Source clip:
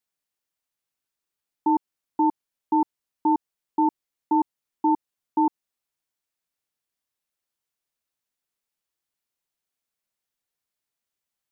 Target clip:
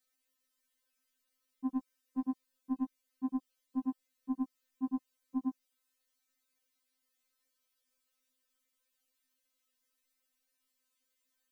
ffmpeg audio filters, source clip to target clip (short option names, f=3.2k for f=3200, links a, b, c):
-af "asuperstop=centerf=860:order=4:qfactor=2.9,afftfilt=real='re*3.46*eq(mod(b,12),0)':imag='im*3.46*eq(mod(b,12),0)':win_size=2048:overlap=0.75,volume=6.5dB"